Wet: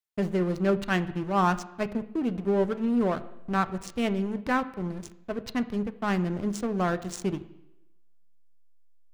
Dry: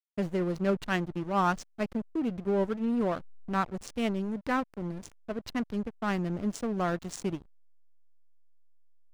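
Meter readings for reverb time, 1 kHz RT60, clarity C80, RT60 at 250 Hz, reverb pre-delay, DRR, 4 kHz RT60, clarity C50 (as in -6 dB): 0.90 s, 0.90 s, 18.0 dB, 0.90 s, 3 ms, 10.5 dB, 0.90 s, 16.0 dB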